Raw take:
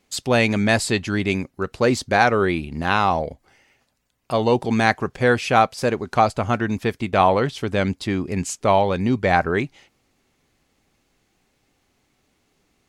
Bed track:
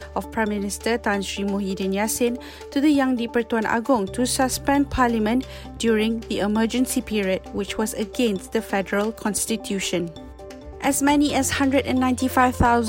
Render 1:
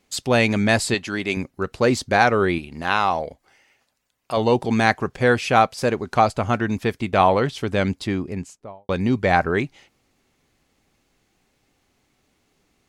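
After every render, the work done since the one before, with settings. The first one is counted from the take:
0:00.94–0:01.37: high-pass filter 350 Hz 6 dB per octave
0:02.58–0:04.37: low-shelf EQ 310 Hz −9 dB
0:07.96–0:08.89: fade out and dull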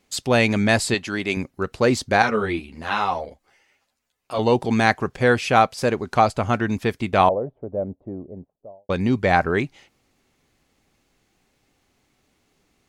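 0:02.22–0:04.39: string-ensemble chorus
0:07.29–0:08.90: transistor ladder low-pass 690 Hz, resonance 60%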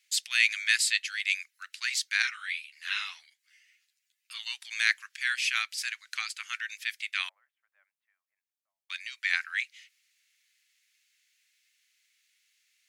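Butterworth high-pass 1,800 Hz 36 dB per octave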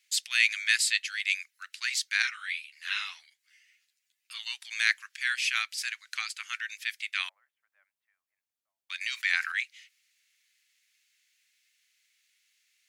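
0:09.01–0:09.52: envelope flattener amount 50%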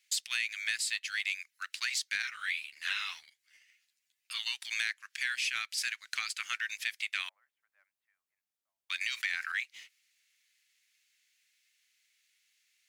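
downward compressor 8 to 1, threshold −33 dBFS, peak gain reduction 15.5 dB
leveller curve on the samples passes 1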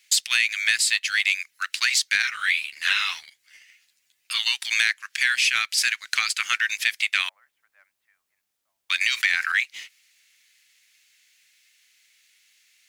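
level +12 dB

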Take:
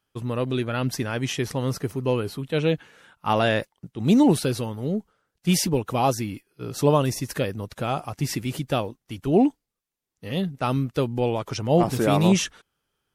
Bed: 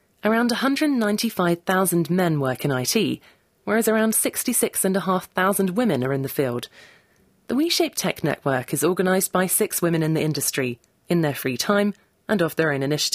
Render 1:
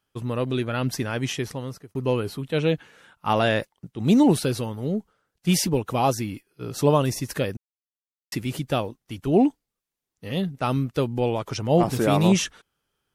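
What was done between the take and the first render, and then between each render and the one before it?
0:01.27–0:01.95: fade out
0:07.57–0:08.32: silence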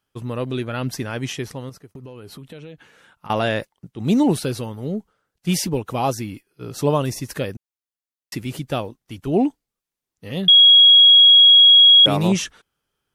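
0:01.69–0:03.30: downward compressor 20 to 1, threshold −34 dBFS
0:10.48–0:12.06: beep over 3,310 Hz −6.5 dBFS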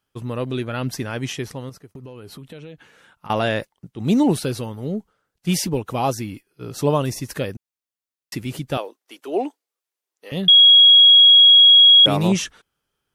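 0:08.77–0:10.32: high-pass filter 370 Hz 24 dB per octave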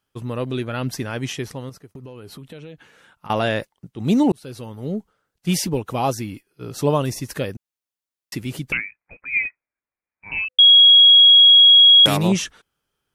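0:04.32–0:04.92: fade in
0:08.72–0:10.59: voice inversion scrambler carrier 2,800 Hz
0:11.31–0:12.16: spectral envelope flattened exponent 0.6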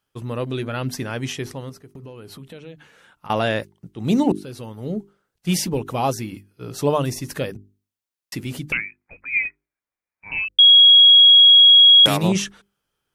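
mains-hum notches 50/100/150/200/250/300/350/400 Hz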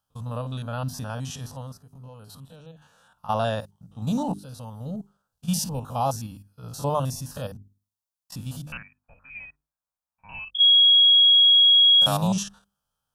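spectrum averaged block by block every 50 ms
phaser with its sweep stopped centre 880 Hz, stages 4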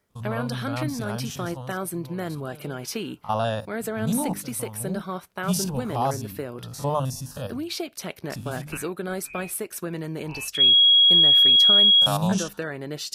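mix in bed −10.5 dB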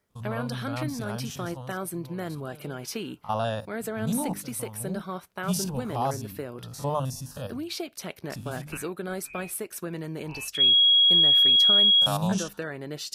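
level −3 dB

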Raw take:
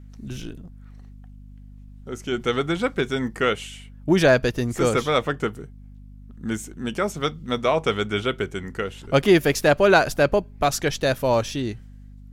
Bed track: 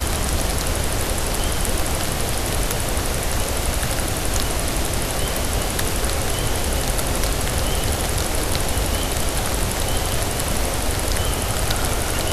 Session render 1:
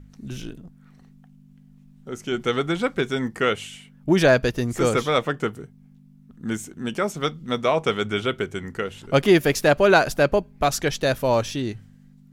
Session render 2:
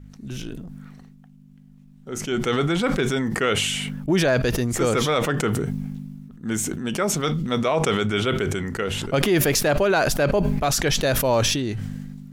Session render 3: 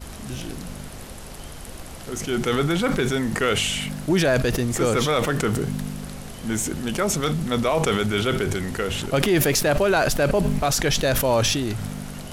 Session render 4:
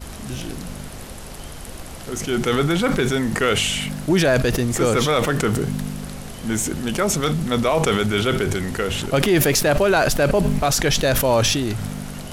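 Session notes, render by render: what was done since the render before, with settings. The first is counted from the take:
hum removal 50 Hz, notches 2
brickwall limiter −11 dBFS, peak gain reduction 7 dB; level that may fall only so fast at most 26 dB per second
mix in bed track −16.5 dB
level +2.5 dB; brickwall limiter −2 dBFS, peak gain reduction 1 dB

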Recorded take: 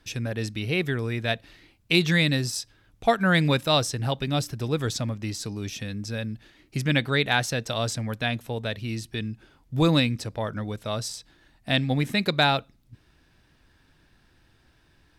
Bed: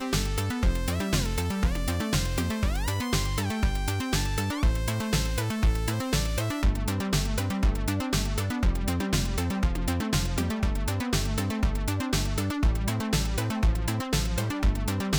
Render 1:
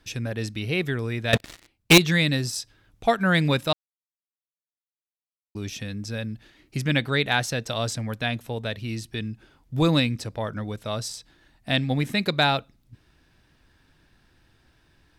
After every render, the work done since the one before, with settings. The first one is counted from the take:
0:01.33–0:01.98: leveller curve on the samples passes 5
0:03.73–0:05.55: silence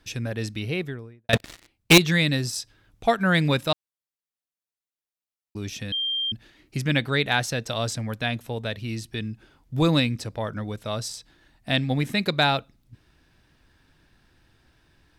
0:00.55–0:01.29: fade out and dull
0:05.92–0:06.32: beep over 3,180 Hz −23.5 dBFS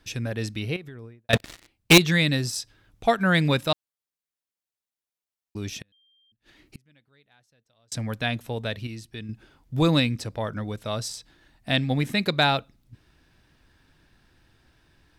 0:00.76–0:01.30: downward compressor 12 to 1, threshold −36 dBFS
0:05.80–0:07.92: gate with flip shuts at −27 dBFS, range −38 dB
0:08.87–0:09.29: clip gain −6.5 dB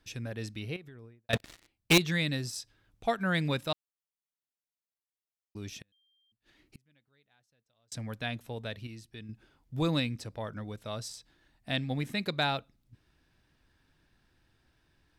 level −8.5 dB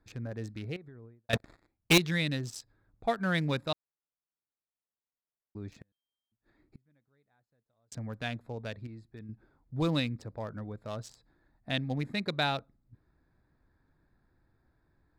adaptive Wiener filter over 15 samples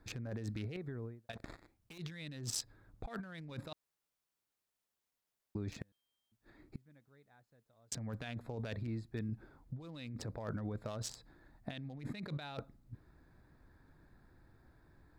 brickwall limiter −23 dBFS, peak gain reduction 6.5 dB
compressor whose output falls as the input rises −43 dBFS, ratio −1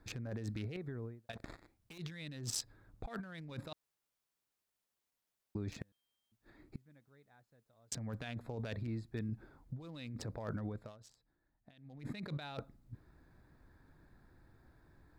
0:10.65–0:12.11: duck −18.5 dB, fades 0.33 s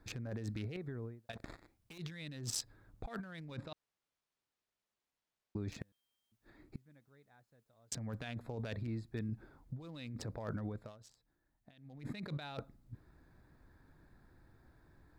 0:03.56–0:05.56: high-frequency loss of the air 74 metres

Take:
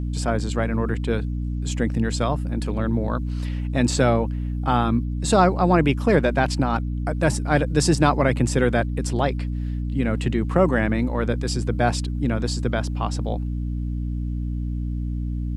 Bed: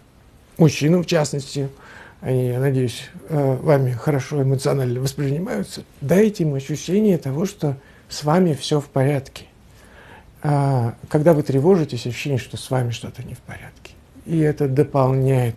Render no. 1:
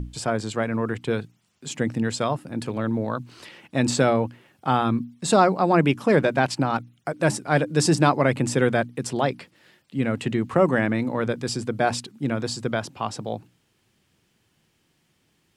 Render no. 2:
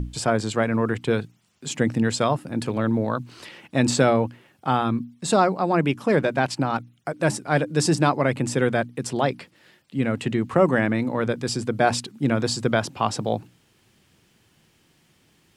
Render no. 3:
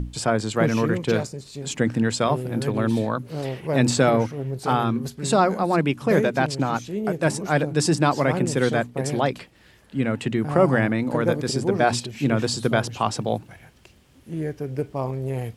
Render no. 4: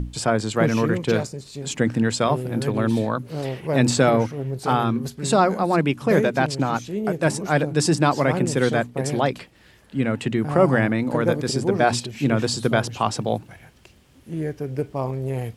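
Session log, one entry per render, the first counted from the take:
mains-hum notches 60/120/180/240/300 Hz
speech leveller 2 s
mix in bed −10.5 dB
level +1 dB; brickwall limiter −3 dBFS, peak gain reduction 1 dB

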